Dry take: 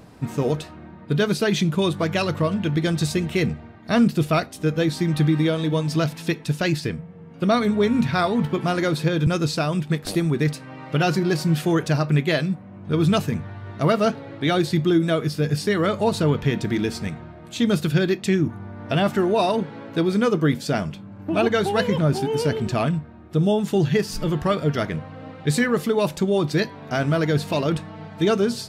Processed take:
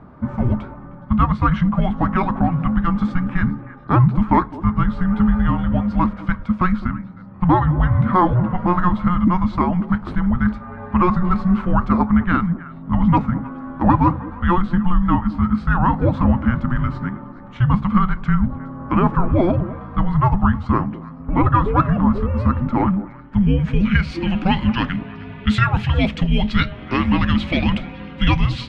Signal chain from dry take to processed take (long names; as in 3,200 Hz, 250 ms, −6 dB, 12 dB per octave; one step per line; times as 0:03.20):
echo through a band-pass that steps 104 ms, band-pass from 290 Hz, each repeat 1.4 octaves, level −11 dB
frequency shifter −360 Hz
low-pass filter sweep 1,200 Hz → 2,700 Hz, 0:22.85–0:24.31
level +3.5 dB